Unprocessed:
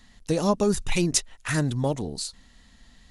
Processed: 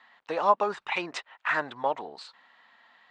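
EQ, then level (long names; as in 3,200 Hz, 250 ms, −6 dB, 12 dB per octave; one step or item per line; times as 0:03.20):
high-pass with resonance 940 Hz, resonance Q 1.5
Butterworth low-pass 8,600 Hz 72 dB per octave
high-frequency loss of the air 490 metres
+6.5 dB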